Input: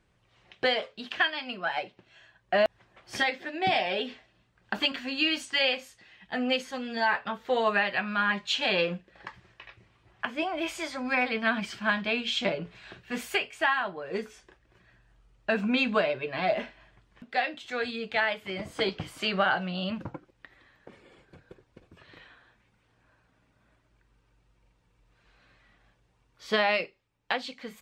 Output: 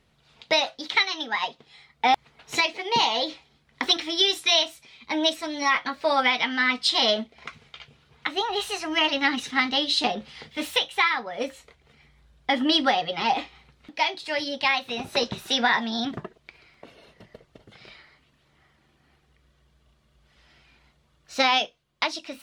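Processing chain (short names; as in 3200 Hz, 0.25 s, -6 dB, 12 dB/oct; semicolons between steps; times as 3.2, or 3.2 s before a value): varispeed +24%; bell 3900 Hz +3.5 dB 0.77 oct; gain +3.5 dB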